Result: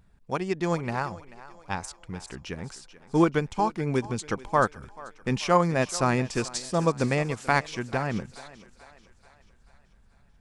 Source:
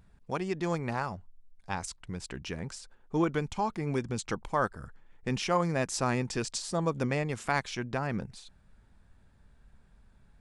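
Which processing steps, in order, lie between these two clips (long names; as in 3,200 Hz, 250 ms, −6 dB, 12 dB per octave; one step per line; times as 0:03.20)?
feedback echo with a high-pass in the loop 436 ms, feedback 52%, high-pass 320 Hz, level −13 dB
expander for the loud parts 1.5 to 1, over −39 dBFS
level +7.5 dB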